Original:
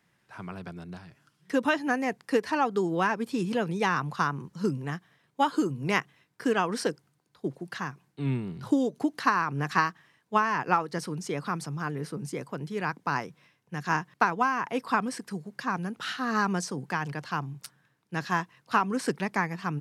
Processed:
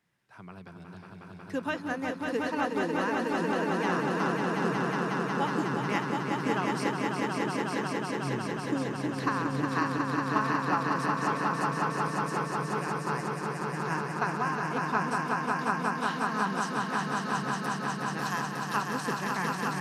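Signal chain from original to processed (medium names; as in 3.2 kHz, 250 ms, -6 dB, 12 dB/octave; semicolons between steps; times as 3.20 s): 18.19–18.77 s: RIAA curve recording; echo with a slow build-up 182 ms, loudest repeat 5, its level -4 dB; trim -7 dB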